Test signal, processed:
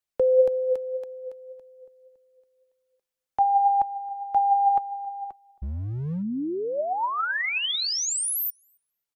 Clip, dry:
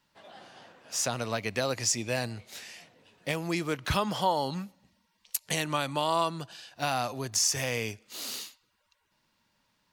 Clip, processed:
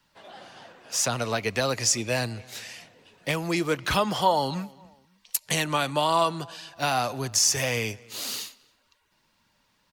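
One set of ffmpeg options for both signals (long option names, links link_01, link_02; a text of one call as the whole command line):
ffmpeg -i in.wav -filter_complex "[0:a]flanger=delay=0.6:depth=2.3:regen=68:speed=1.8:shape=triangular,acrossover=split=240|640|3600[link_01][link_02][link_03][link_04];[link_01]asoftclip=type=hard:threshold=-38dB[link_05];[link_05][link_02][link_03][link_04]amix=inputs=4:normalize=0,asplit=2[link_06][link_07];[link_07]adelay=271,lowpass=frequency=3000:poles=1,volume=-24dB,asplit=2[link_08][link_09];[link_09]adelay=271,lowpass=frequency=3000:poles=1,volume=0.36[link_10];[link_06][link_08][link_10]amix=inputs=3:normalize=0,volume=9dB" out.wav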